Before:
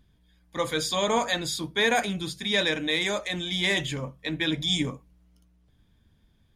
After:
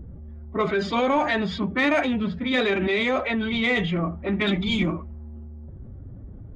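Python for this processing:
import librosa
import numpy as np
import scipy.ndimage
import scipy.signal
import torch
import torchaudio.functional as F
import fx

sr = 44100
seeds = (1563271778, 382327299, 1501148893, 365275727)

p1 = fx.env_lowpass(x, sr, base_hz=560.0, full_db=-20.5)
p2 = scipy.signal.sosfilt(scipy.signal.butter(2, 2200.0, 'lowpass', fs=sr, output='sos'), p1)
p3 = fx.pitch_keep_formants(p2, sr, semitones=4.0)
p4 = 10.0 ** (-22.5 / 20.0) * np.tanh(p3 / 10.0 ** (-22.5 / 20.0))
p5 = p3 + F.gain(torch.from_numpy(p4), -5.0).numpy()
y = fx.env_flatten(p5, sr, amount_pct=50)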